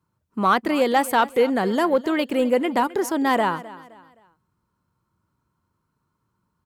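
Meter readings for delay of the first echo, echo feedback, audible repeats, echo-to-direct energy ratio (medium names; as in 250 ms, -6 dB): 260 ms, 36%, 2, -17.5 dB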